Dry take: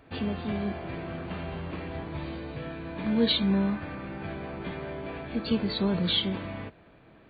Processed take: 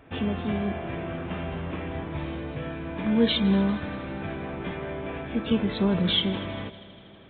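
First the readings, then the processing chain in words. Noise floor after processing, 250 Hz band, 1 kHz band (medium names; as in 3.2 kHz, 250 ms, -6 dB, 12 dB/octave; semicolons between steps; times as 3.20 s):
-48 dBFS, +3.0 dB, +3.0 dB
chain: on a send: multi-head delay 80 ms, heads second and third, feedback 63%, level -20.5 dB; on the sum: resampled via 8 kHz; trim +3 dB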